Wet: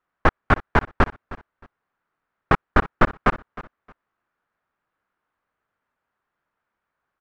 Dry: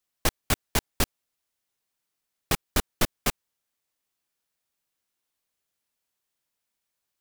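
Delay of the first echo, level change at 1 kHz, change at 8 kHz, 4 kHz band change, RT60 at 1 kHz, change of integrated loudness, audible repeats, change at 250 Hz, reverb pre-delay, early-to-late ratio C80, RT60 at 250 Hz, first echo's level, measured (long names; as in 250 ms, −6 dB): 311 ms, +13.0 dB, below −20 dB, −7.0 dB, no reverb audible, +6.5 dB, 2, +8.5 dB, no reverb audible, no reverb audible, no reverb audible, −18.0 dB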